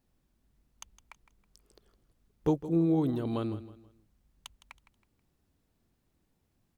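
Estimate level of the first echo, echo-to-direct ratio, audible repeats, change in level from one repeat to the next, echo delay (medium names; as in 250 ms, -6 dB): -14.5 dB, -14.0 dB, 3, -9.5 dB, 161 ms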